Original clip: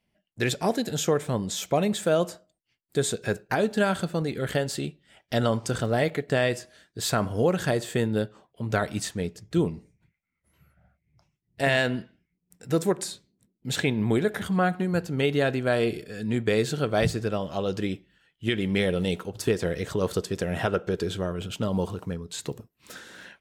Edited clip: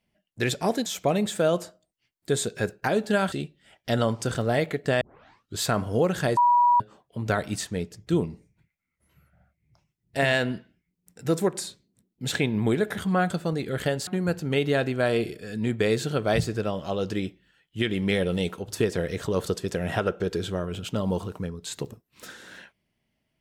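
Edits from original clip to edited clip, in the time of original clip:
0:00.86–0:01.53: remove
0:03.99–0:04.76: move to 0:14.74
0:06.45: tape start 0.59 s
0:07.81–0:08.24: beep over 968 Hz −15.5 dBFS

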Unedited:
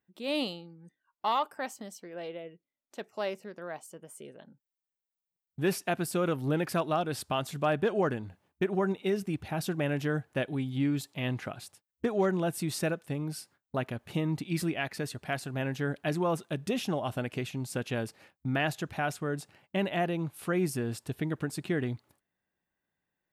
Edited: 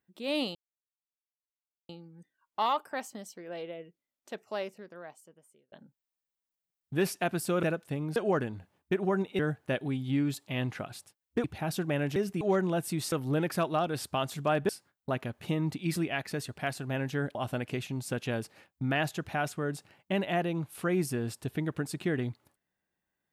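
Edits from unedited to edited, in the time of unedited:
0:00.55: splice in silence 1.34 s
0:03.00–0:04.38: fade out
0:06.29–0:07.86: swap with 0:12.82–0:13.35
0:09.09–0:09.34: swap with 0:10.06–0:12.11
0:16.01–0:16.99: remove

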